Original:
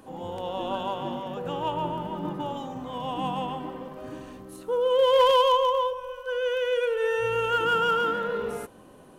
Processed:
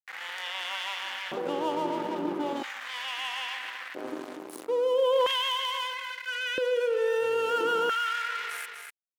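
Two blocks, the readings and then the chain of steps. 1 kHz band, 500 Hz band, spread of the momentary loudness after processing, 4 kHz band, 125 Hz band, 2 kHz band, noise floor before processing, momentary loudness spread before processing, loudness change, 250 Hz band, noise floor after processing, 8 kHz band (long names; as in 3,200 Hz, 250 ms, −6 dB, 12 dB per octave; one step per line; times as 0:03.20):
−5.5 dB, −3.5 dB, 12 LU, +1.5 dB, below −10 dB, +1.0 dB, −50 dBFS, 18 LU, −3.5 dB, −1.5 dB, −44 dBFS, can't be measured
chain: dead-zone distortion −39 dBFS
single-tap delay 245 ms −13.5 dB
auto-filter high-pass square 0.38 Hz 320–1,900 Hz
envelope flattener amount 50%
level −7.5 dB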